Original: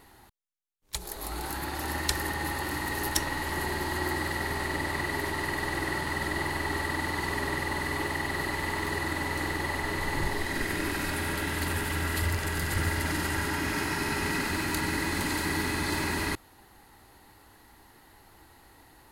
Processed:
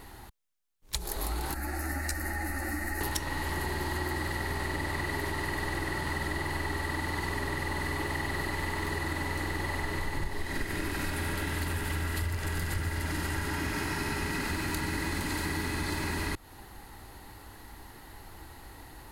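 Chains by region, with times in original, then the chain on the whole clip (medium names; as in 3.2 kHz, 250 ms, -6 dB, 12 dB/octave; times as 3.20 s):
1.54–3.01 s: static phaser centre 670 Hz, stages 8 + three-phase chorus
whole clip: bass shelf 94 Hz +8.5 dB; compression, threshold -35 dBFS; trim +5.5 dB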